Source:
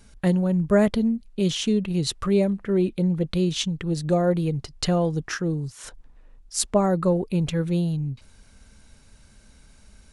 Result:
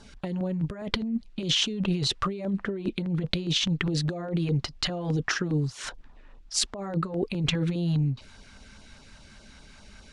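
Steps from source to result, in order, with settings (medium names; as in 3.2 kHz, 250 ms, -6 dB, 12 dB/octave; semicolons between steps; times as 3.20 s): low-pass 4.7 kHz 12 dB/octave; bass shelf 200 Hz -10.5 dB; band-stop 490 Hz, Q 12; compressor with a negative ratio -32 dBFS, ratio -1; LFO notch saw down 4.9 Hz 270–2600 Hz; trim +4.5 dB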